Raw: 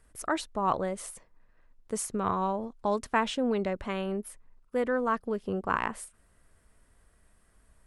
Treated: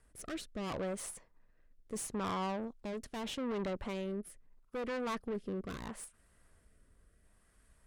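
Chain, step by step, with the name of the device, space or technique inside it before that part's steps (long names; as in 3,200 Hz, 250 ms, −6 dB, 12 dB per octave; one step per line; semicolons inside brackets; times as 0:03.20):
overdriven rotary cabinet (tube saturation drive 34 dB, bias 0.5; rotating-speaker cabinet horn 0.75 Hz)
level +1 dB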